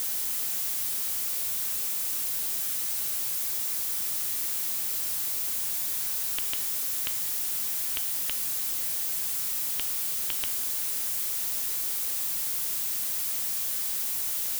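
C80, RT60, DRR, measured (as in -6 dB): 19.5 dB, 0.55 s, 10.5 dB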